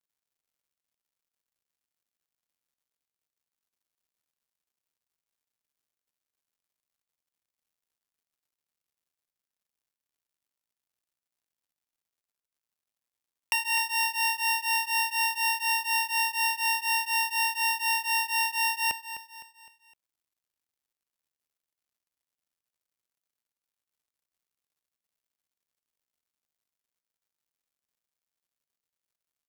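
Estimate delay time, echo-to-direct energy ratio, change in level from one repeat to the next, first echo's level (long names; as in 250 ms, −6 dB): 256 ms, −11.0 dB, −7.0 dB, −12.0 dB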